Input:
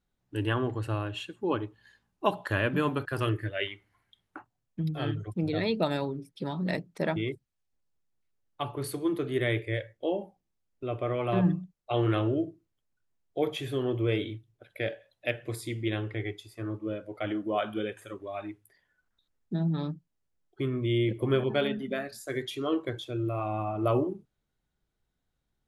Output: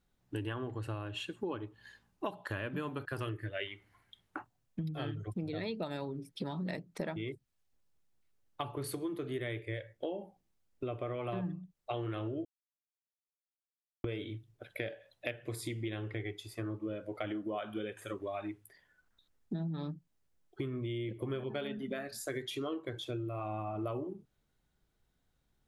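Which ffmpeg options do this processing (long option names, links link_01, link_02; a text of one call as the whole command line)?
ffmpeg -i in.wav -filter_complex "[0:a]asplit=3[link_01][link_02][link_03];[link_01]atrim=end=12.45,asetpts=PTS-STARTPTS,afade=type=out:start_time=12.446:duration=0.004:curve=hsin[link_04];[link_02]atrim=start=12.45:end=14.04,asetpts=PTS-STARTPTS,volume=0[link_05];[link_03]atrim=start=14.04,asetpts=PTS-STARTPTS,afade=type=in:duration=0.004:curve=hsin[link_06];[link_04][link_05][link_06]concat=n=3:v=0:a=1,acompressor=threshold=-39dB:ratio=6,volume=3.5dB" out.wav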